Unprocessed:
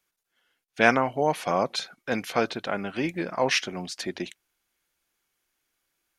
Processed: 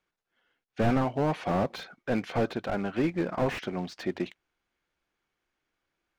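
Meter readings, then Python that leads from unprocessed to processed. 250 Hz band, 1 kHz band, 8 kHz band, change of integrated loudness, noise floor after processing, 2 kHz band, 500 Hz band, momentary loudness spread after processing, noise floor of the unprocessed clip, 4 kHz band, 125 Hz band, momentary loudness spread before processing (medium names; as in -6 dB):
+1.5 dB, -5.5 dB, -15.0 dB, -3.5 dB, under -85 dBFS, -10.0 dB, -3.0 dB, 9 LU, -82 dBFS, -11.0 dB, +5.0 dB, 12 LU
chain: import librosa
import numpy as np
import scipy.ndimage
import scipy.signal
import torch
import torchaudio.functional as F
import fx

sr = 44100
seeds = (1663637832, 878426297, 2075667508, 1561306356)

y = fx.quant_float(x, sr, bits=2)
y = fx.spacing_loss(y, sr, db_at_10k=23)
y = fx.slew_limit(y, sr, full_power_hz=31.0)
y = y * librosa.db_to_amplitude(2.5)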